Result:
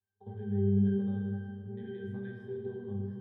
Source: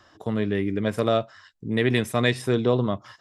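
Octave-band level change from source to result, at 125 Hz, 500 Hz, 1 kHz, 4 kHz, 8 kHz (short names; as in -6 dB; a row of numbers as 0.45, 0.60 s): -6.0 dB, -14.0 dB, -24.5 dB, under -30 dB, under -35 dB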